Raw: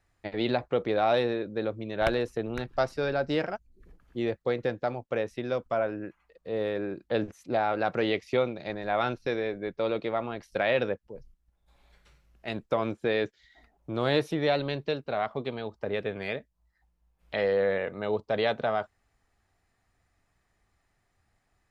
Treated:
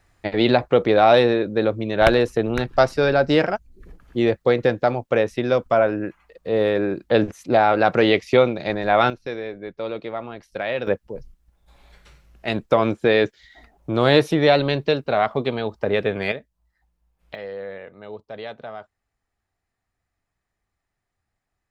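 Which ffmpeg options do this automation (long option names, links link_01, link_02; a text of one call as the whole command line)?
ffmpeg -i in.wav -af "asetnsamples=nb_out_samples=441:pad=0,asendcmd='9.1 volume volume 0dB;10.87 volume volume 10dB;16.32 volume volume 2dB;17.35 volume volume -7.5dB',volume=10.5dB" out.wav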